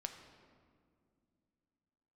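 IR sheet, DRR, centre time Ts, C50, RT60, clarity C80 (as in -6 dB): 5.0 dB, 29 ms, 7.5 dB, 2.3 s, 8.5 dB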